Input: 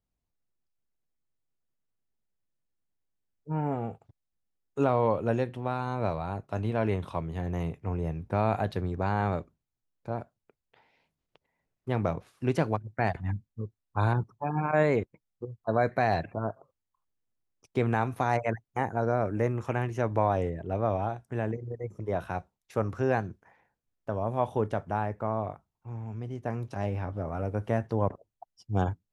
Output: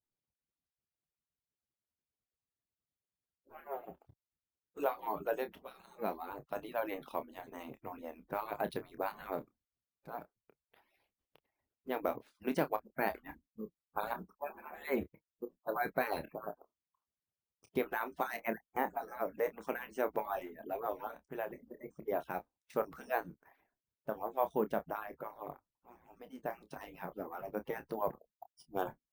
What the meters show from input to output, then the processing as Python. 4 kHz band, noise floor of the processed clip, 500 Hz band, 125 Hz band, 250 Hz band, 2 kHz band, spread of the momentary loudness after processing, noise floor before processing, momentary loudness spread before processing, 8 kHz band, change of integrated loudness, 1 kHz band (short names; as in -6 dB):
-6.0 dB, under -85 dBFS, -8.0 dB, -25.0 dB, -11.0 dB, -6.0 dB, 13 LU, -85 dBFS, 11 LU, n/a, -9.0 dB, -7.5 dB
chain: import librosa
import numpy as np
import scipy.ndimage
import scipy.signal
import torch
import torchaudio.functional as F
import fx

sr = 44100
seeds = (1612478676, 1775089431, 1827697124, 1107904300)

y = fx.hpss_only(x, sr, part='percussive')
y = np.repeat(scipy.signal.resample_poly(y, 1, 3), 3)[:len(y)]
y = fx.doubler(y, sr, ms=28.0, db=-11.0)
y = y * librosa.db_to_amplitude(-4.0)